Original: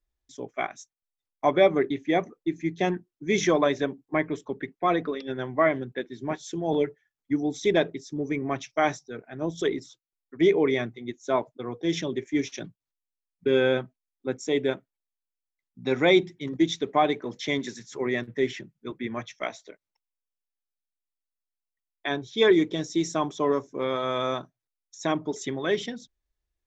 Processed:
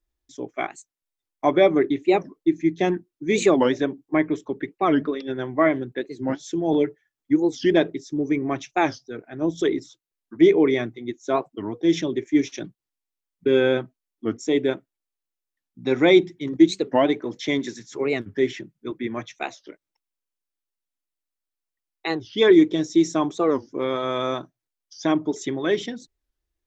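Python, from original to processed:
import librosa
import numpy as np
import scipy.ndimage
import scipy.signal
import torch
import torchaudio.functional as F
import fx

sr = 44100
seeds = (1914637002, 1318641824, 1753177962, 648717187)

y = fx.peak_eq(x, sr, hz=320.0, db=7.0, octaves=0.44)
y = fx.record_warp(y, sr, rpm=45.0, depth_cents=250.0)
y = y * librosa.db_to_amplitude(1.5)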